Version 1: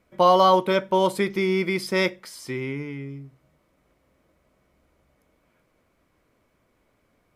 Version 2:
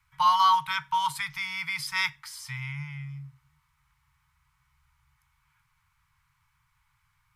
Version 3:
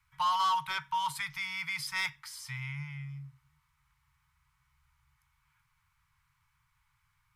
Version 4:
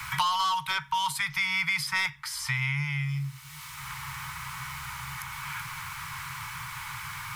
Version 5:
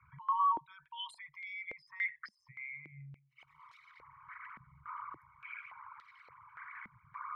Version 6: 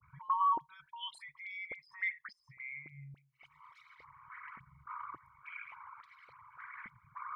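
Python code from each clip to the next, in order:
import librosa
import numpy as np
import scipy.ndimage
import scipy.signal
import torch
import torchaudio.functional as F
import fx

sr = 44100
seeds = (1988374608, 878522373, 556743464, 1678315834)

y1 = scipy.signal.sosfilt(scipy.signal.cheby1(5, 1.0, [150.0, 870.0], 'bandstop', fs=sr, output='sos'), x)
y2 = fx.peak_eq(y1, sr, hz=500.0, db=-3.5, octaves=1.0)
y2 = 10.0 ** (-21.0 / 20.0) * np.tanh(y2 / 10.0 ** (-21.0 / 20.0))
y2 = y2 * 10.0 ** (-3.0 / 20.0)
y3 = fx.band_squash(y2, sr, depth_pct=100)
y3 = y3 * 10.0 ** (8.5 / 20.0)
y4 = fx.envelope_sharpen(y3, sr, power=3.0)
y4 = fx.filter_held_bandpass(y4, sr, hz=3.5, low_hz=210.0, high_hz=4100.0)
y4 = y4 * 10.0 ** (-1.0 / 20.0)
y5 = fx.dispersion(y4, sr, late='highs', ms=46.0, hz=1900.0)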